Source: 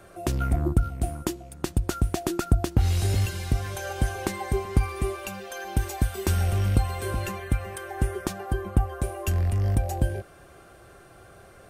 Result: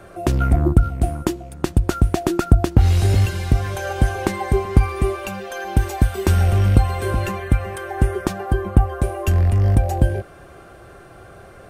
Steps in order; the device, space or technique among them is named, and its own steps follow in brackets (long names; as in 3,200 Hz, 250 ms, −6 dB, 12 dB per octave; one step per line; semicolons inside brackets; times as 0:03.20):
behind a face mask (high-shelf EQ 3,500 Hz −7.5 dB)
level +8 dB